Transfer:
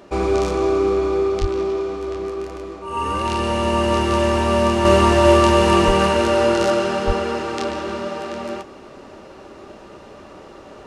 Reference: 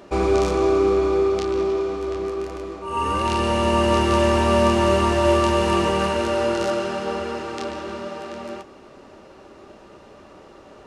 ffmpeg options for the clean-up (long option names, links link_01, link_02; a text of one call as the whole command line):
ffmpeg -i in.wav -filter_complex "[0:a]asplit=3[link_01][link_02][link_03];[link_01]afade=type=out:start_time=1.4:duration=0.02[link_04];[link_02]highpass=frequency=140:width=0.5412,highpass=frequency=140:width=1.3066,afade=type=in:start_time=1.4:duration=0.02,afade=type=out:start_time=1.52:duration=0.02[link_05];[link_03]afade=type=in:start_time=1.52:duration=0.02[link_06];[link_04][link_05][link_06]amix=inputs=3:normalize=0,asplit=3[link_07][link_08][link_09];[link_07]afade=type=out:start_time=5.86:duration=0.02[link_10];[link_08]highpass=frequency=140:width=0.5412,highpass=frequency=140:width=1.3066,afade=type=in:start_time=5.86:duration=0.02,afade=type=out:start_time=5.98:duration=0.02[link_11];[link_09]afade=type=in:start_time=5.98:duration=0.02[link_12];[link_10][link_11][link_12]amix=inputs=3:normalize=0,asplit=3[link_13][link_14][link_15];[link_13]afade=type=out:start_time=7.06:duration=0.02[link_16];[link_14]highpass=frequency=140:width=0.5412,highpass=frequency=140:width=1.3066,afade=type=in:start_time=7.06:duration=0.02,afade=type=out:start_time=7.18:duration=0.02[link_17];[link_15]afade=type=in:start_time=7.18:duration=0.02[link_18];[link_16][link_17][link_18]amix=inputs=3:normalize=0,asetnsamples=nb_out_samples=441:pad=0,asendcmd='4.85 volume volume -5dB',volume=0dB" out.wav